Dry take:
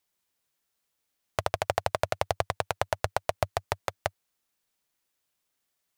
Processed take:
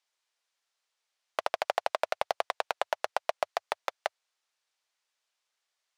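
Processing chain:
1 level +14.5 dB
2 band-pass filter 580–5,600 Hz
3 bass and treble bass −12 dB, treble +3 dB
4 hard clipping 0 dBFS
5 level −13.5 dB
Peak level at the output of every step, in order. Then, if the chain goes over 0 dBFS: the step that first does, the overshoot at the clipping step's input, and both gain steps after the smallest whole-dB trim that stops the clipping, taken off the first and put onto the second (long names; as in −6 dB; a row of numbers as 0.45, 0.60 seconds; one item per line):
+8.5, +5.5, +6.0, 0.0, −13.5 dBFS
step 1, 6.0 dB
step 1 +8.5 dB, step 5 −7.5 dB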